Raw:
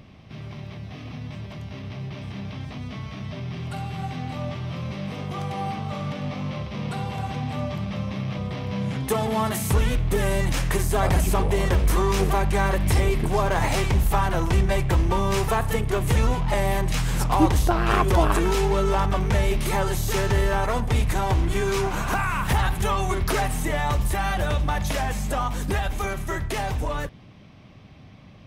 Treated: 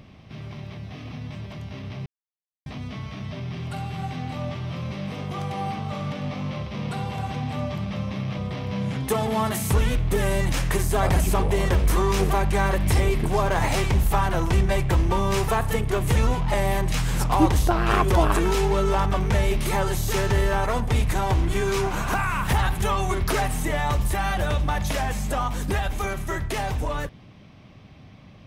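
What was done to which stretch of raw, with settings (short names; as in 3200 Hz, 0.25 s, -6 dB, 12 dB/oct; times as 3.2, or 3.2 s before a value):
2.06–2.66 mute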